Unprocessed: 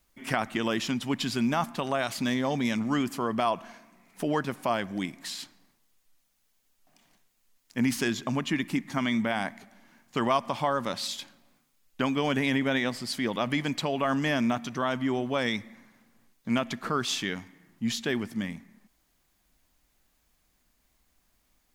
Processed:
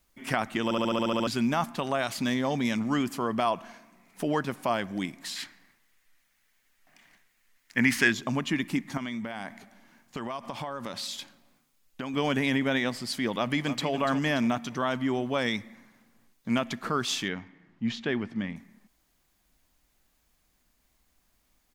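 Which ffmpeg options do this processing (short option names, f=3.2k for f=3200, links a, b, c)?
-filter_complex "[0:a]asettb=1/sr,asplit=3[a][b][c];[a]atrim=end=5.364[d];[b]atrim=start=5.36:end=8.12,asetpts=PTS-STARTPTS,afade=t=in:d=0.004:c=qsin,afade=t=out:st=2.756:d=0.004:c=qsin,equalizer=f=1.9k:w=1.4:g=13[e];[c]atrim=start=8.116[f];[d][e]acrossfade=d=0.004:c1=hsin:c2=qsin[g];[g][f]acrossfade=d=0.004:c1=qsin:c2=hsin,asettb=1/sr,asplit=3[h][i][j];[h]atrim=end=8.974[k];[i]atrim=start=8.97:end=12.14,asetpts=PTS-STARTPTS,afade=t=in:d=0.004:c=qsin,afade=t=out:st=3.166:d=0.004:c=qsin,acompressor=threshold=-31dB:ratio=6:attack=3.2:release=140:knee=1:detection=peak[l];[j]atrim=start=12.136[m];[k][l]acrossfade=d=0.004:c1=hsin:c2=qsin[n];[n][m]acrossfade=d=0.004:c1=qsin:c2=hsin,asplit=2[o][p];[p]afade=t=in:st=13.37:d=0.01,afade=t=out:st=13.89:d=0.01,aecho=0:1:290|580|870|1160:0.281838|0.112735|0.0450941|0.0180377[q];[o][q]amix=inputs=2:normalize=0,asettb=1/sr,asplit=3[r][s][t];[r]atrim=end=17.284[u];[s]atrim=start=17.28:end=18.56,asetpts=PTS-STARTPTS,afade=t=in:d=0.004:c=qsin,afade=t=out:st=1.276:d=0.004:c=qsin,lowpass=3.2k[v];[t]atrim=start=18.556[w];[u][v]acrossfade=d=0.004:c1=hsin:c2=qsin[x];[x][w]acrossfade=d=0.004:c1=qsin:c2=hsin,asplit=10[y][z][aa][ab][ac][ad][ae][af][ag][ah];[y]atrim=end=0.712[ai];[z]atrim=start=0.638:end=0.712[aj];[aa]atrim=start=0.638:end=0.712[ak];[ab]atrim=start=0.638:end=0.712[al];[ac]atrim=start=0.638:end=0.712[am];[ad]atrim=start=0.638:end=0.712[an];[ae]atrim=start=0.638:end=0.712[ao];[af]atrim=start=0.638:end=0.712[ap];[ag]atrim=start=0.638:end=0.712[aq];[ah]atrim=start=1.268[ar];[ai][aj]acrossfade=d=0.004:c1=hsin:c2=hsin[as];[as][ak]acrossfade=d=0.004:c1=hsin:c2=hsin[at];[at][al]acrossfade=d=0.004:c1=hsin:c2=hsin[au];[au][am]acrossfade=d=0.004:c1=hsin:c2=hsin[av];[av][an]acrossfade=d=0.004:c1=hsin:c2=hsin[aw];[aw][ao]acrossfade=d=0.004:c1=hsin:c2=hsin[ax];[ax][ap]acrossfade=d=0.004:c1=hsin:c2=hsin[ay];[ay][aq]acrossfade=d=0.004:c1=hsin:c2=hsin[az];[az][ar]acrossfade=d=0.004:c1=hsin:c2=hsin"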